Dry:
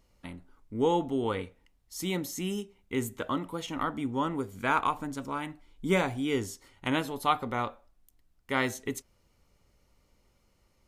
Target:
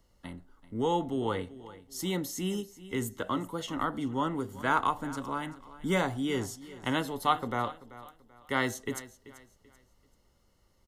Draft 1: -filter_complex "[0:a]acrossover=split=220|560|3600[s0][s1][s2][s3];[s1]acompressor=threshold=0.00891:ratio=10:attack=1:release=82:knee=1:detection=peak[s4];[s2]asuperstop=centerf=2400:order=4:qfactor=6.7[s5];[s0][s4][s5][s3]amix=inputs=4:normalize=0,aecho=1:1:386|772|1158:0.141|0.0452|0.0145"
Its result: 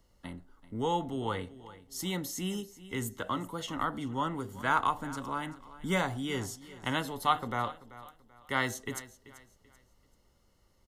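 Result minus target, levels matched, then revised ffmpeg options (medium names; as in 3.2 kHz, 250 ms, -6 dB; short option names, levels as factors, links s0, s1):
compression: peak gain reduction +9.5 dB
-filter_complex "[0:a]acrossover=split=220|560|3600[s0][s1][s2][s3];[s1]acompressor=threshold=0.0299:ratio=10:attack=1:release=82:knee=1:detection=peak[s4];[s2]asuperstop=centerf=2400:order=4:qfactor=6.7[s5];[s0][s4][s5][s3]amix=inputs=4:normalize=0,aecho=1:1:386|772|1158:0.141|0.0452|0.0145"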